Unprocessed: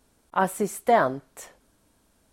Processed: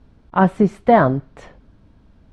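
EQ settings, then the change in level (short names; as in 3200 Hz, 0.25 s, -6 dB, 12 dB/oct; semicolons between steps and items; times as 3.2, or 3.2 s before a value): LPF 9600 Hz 24 dB/oct; air absorption 330 m; tone controls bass +12 dB, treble +6 dB; +7.0 dB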